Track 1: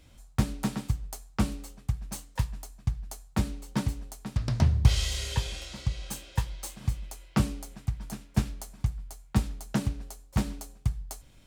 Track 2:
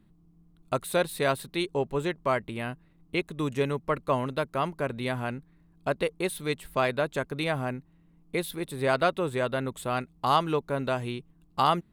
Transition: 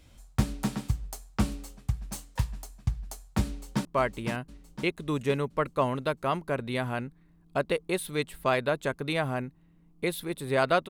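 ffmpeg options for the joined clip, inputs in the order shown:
-filter_complex "[0:a]apad=whole_dur=10.89,atrim=end=10.89,atrim=end=3.852[s0];[1:a]atrim=start=2.158:end=9.2[s1];[s0][s1]acrossfade=d=0.004:c1=hsin:c2=hsin,asplit=2[s2][s3];[s3]afade=t=in:st=3.46:d=0.01,afade=t=out:st=3.85:d=0.01,aecho=0:1:510|1020|1530|2040|2550|3060:0.530884|0.265442|0.132721|0.0663606|0.0331803|0.0165901[s4];[s2][s4]amix=inputs=2:normalize=0"

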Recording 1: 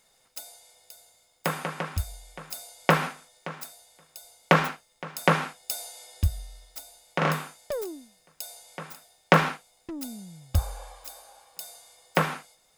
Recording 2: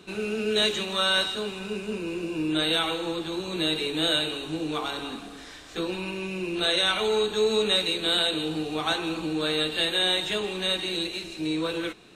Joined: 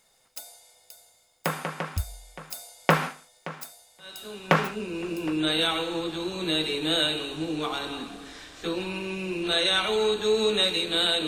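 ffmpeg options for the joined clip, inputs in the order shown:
-filter_complex "[0:a]apad=whole_dur=11.27,atrim=end=11.27,atrim=end=5.38,asetpts=PTS-STARTPTS[s0];[1:a]atrim=start=1.1:end=8.39,asetpts=PTS-STARTPTS[s1];[s0][s1]acrossfade=d=1.4:c1=qsin:c2=qsin"

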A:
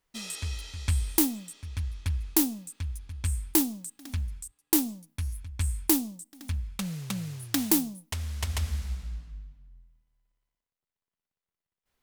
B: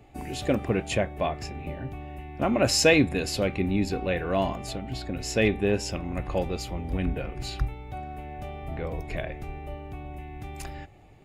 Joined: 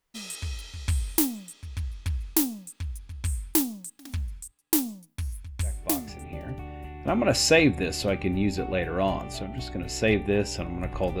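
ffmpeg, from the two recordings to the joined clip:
-filter_complex "[0:a]apad=whole_dur=11.2,atrim=end=11.2,atrim=end=6.55,asetpts=PTS-STARTPTS[s0];[1:a]atrim=start=0.93:end=6.54,asetpts=PTS-STARTPTS[s1];[s0][s1]acrossfade=d=0.96:c1=tri:c2=tri"

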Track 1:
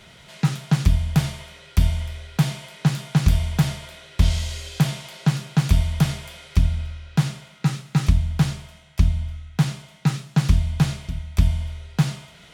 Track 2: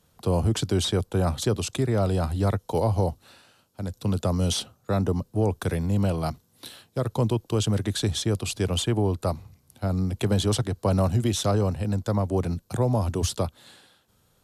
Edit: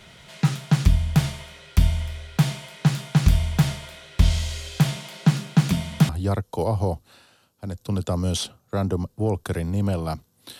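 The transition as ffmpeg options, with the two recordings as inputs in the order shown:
-filter_complex "[0:a]asettb=1/sr,asplit=3[s0][s1][s2];[s0]atrim=end=4.964[s3];[s1]atrim=start=4.96:end=6.09,asetpts=PTS-STARTPTS,afade=t=in:d=0.004:c=qsin,afade=t=out:st=1.126:d=0.004:c=qsin,highpass=f=190:t=q:w=1.9[s4];[s2]atrim=start=6.086[s5];[s3][s4]acrossfade=d=0.004:c1=hsin:c2=qsin[s6];[s6][s5]acrossfade=d=0.004:c1=qsin:c2=hsin,apad=whole_dur=10.59,atrim=end=10.59,atrim=end=6.092[s7];[1:a]atrim=start=2.248:end=6.75[s8];[s7][s8]acrossfade=d=0.004:c1=hsin:c2=hsin"

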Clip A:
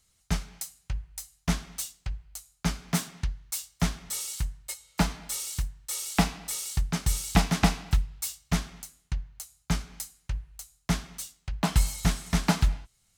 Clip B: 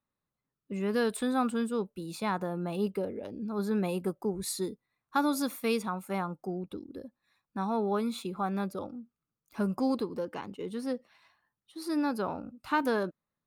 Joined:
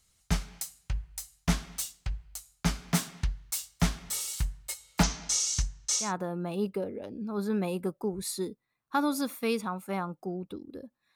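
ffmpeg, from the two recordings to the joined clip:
-filter_complex "[0:a]asettb=1/sr,asplit=3[s0][s1][s2];[s0]atrim=end=5.034[s3];[s1]atrim=start=5.03:end=6.13,asetpts=PTS-STARTPTS,afade=t=in:d=0.004:c=qsin,afade=t=out:st=1.096:d=0.004:c=qsin,lowpass=f=6200:t=q:w=4.4[s4];[s2]atrim=start=6.126[s5];[s3][s4]acrossfade=d=0.004:c1=hsin:c2=qsin[s6];[s6][s5]acrossfade=d=0.004:c1=qsin:c2=hsin,apad=whole_dur=11.15,atrim=end=11.15,atrim=end=6.13,asetpts=PTS-STARTPTS[s7];[1:a]atrim=start=2.16:end=7.36,asetpts=PTS-STARTPTS[s8];[s7][s8]acrossfade=d=0.18:c1=tri:c2=tri"

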